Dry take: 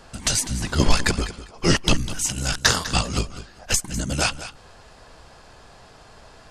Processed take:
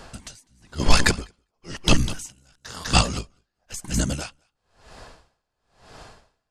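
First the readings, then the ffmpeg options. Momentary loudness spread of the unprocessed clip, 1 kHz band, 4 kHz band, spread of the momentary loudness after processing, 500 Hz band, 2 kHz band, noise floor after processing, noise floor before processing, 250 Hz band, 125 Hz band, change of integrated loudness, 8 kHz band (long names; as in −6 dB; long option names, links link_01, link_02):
11 LU, −0.5 dB, −3.0 dB, 20 LU, −3.0 dB, −2.5 dB, −79 dBFS, −49 dBFS, −2.0 dB, −1.5 dB, −1.0 dB, −6.0 dB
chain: -af "aeval=exprs='val(0)*pow(10,-38*(0.5-0.5*cos(2*PI*1*n/s))/20)':channel_layout=same,volume=4.5dB"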